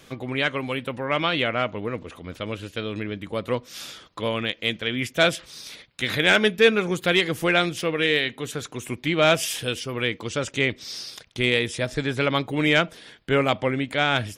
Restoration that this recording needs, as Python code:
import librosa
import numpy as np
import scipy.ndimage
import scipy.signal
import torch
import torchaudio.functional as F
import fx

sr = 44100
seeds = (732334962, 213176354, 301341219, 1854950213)

y = fx.fix_declip(x, sr, threshold_db=-8.0)